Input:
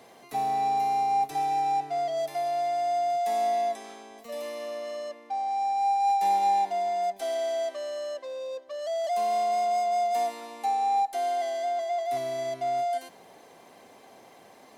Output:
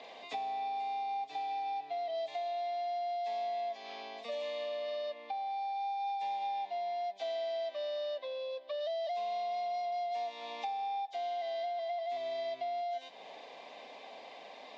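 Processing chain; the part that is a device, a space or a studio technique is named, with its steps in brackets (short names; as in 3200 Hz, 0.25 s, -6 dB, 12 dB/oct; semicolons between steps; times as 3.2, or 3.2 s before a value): hearing aid with frequency lowering (nonlinear frequency compression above 2900 Hz 1.5:1; compressor 4:1, threshold -41 dBFS, peak gain reduction 16 dB; speaker cabinet 350–5100 Hz, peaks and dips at 360 Hz -9 dB, 610 Hz +3 dB, 1400 Hz -9 dB, 2500 Hz +6 dB, 3700 Hz +7 dB); gain +3 dB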